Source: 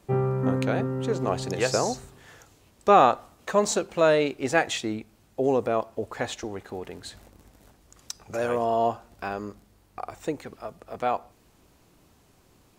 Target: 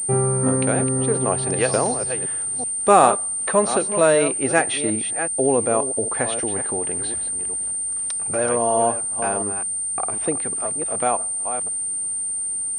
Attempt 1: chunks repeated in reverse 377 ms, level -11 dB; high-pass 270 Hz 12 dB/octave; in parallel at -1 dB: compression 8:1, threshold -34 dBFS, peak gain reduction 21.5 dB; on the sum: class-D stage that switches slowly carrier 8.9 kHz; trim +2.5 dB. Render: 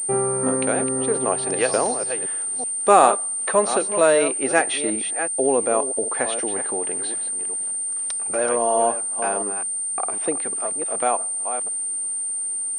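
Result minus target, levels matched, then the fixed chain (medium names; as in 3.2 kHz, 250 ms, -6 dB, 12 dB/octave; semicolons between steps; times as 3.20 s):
125 Hz band -10.5 dB
chunks repeated in reverse 377 ms, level -11 dB; high-pass 78 Hz 12 dB/octave; in parallel at -1 dB: compression 8:1, threshold -34 dBFS, peak gain reduction 21.5 dB; on the sum: class-D stage that switches slowly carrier 8.9 kHz; trim +2.5 dB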